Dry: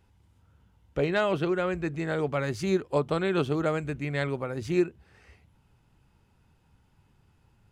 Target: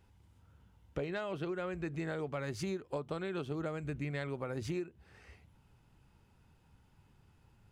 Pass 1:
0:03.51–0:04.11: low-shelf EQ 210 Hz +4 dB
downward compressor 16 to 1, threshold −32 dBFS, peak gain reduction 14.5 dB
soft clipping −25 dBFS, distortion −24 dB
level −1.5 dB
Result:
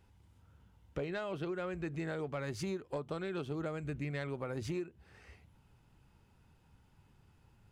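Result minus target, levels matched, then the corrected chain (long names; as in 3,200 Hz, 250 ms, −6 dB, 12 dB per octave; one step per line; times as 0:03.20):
soft clipping: distortion +11 dB
0:03.51–0:04.11: low-shelf EQ 210 Hz +4 dB
downward compressor 16 to 1, threshold −32 dBFS, peak gain reduction 14.5 dB
soft clipping −19 dBFS, distortion −35 dB
level −1.5 dB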